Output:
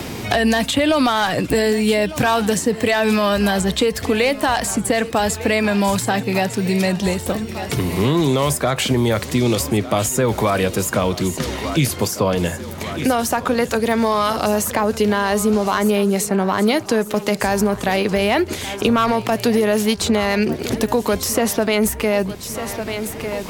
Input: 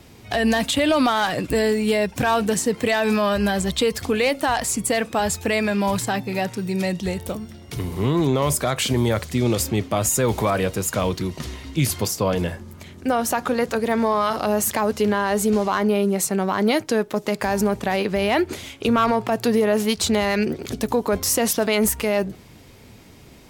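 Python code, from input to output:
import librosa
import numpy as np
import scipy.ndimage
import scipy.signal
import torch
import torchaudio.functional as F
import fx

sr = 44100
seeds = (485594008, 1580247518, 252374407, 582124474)

y = fx.echo_thinned(x, sr, ms=1200, feedback_pct=52, hz=210.0, wet_db=-17.0)
y = fx.band_squash(y, sr, depth_pct=70)
y = y * librosa.db_to_amplitude(2.5)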